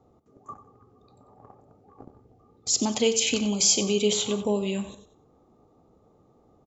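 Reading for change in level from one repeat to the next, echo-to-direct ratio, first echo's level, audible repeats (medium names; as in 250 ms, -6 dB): -8.0 dB, -12.5 dB, -13.0 dB, 2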